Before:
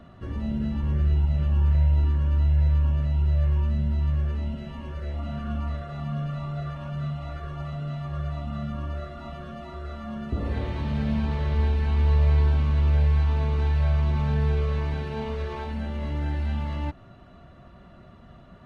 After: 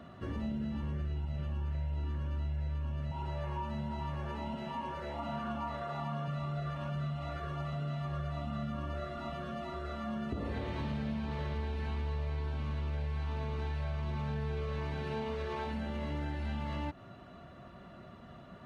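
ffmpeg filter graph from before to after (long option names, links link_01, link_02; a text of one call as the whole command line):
ffmpeg -i in.wav -filter_complex "[0:a]asettb=1/sr,asplit=3[link_01][link_02][link_03];[link_01]atrim=end=3.114[link_04];[link_02]atrim=start=3.11:end=6.28,asetpts=PTS-STARTPTS,afade=type=in:duration=0.004:curve=qsin,afade=type=out:start_time=3.166:duration=0.004:curve=qsin,highpass=frequency=190:poles=1,equalizer=frequency=910:width=3.7:gain=13.5[link_05];[link_03]atrim=start=6.276[link_06];[link_04][link_05]acrossfade=duration=0.004:curve1=hsin:curve2=qsin[link_07];[link_07][link_06]acrossfade=duration=0.004:curve1=qsin:curve2=hsin,highpass=frequency=140:poles=1,acompressor=threshold=-33dB:ratio=6" out.wav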